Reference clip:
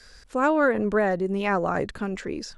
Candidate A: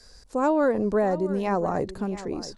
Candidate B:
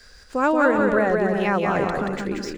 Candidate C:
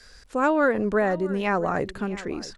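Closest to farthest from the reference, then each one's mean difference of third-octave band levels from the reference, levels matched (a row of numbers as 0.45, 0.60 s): C, A, B; 1.5, 3.0, 6.0 dB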